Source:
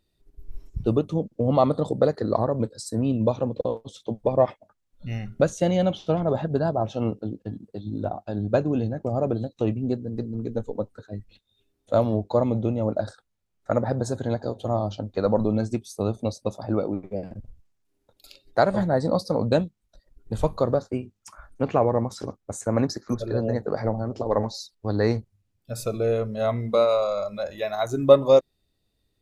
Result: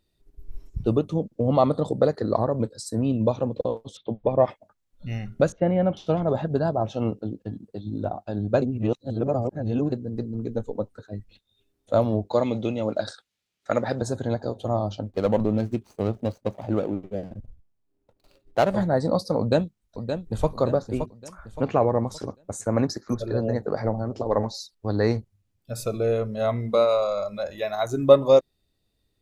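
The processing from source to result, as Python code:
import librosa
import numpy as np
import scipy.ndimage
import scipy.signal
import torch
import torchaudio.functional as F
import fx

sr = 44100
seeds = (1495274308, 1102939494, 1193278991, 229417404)

y = fx.steep_lowpass(x, sr, hz=3800.0, slope=36, at=(3.97, 4.44))
y = fx.lowpass(y, sr, hz=2100.0, slope=24, at=(5.52, 5.97))
y = fx.weighting(y, sr, curve='D', at=(12.33, 14.02))
y = fx.median_filter(y, sr, points=25, at=(15.03, 18.74), fade=0.02)
y = fx.echo_throw(y, sr, start_s=19.39, length_s=1.09, ms=570, feedback_pct=40, wet_db=-7.5)
y = fx.edit(y, sr, fx.reverse_span(start_s=8.62, length_s=1.3), tone=tone)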